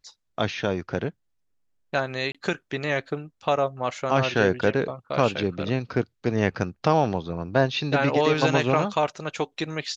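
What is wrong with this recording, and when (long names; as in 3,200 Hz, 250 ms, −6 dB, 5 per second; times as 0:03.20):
0:02.32–0:02.35: drop-out 26 ms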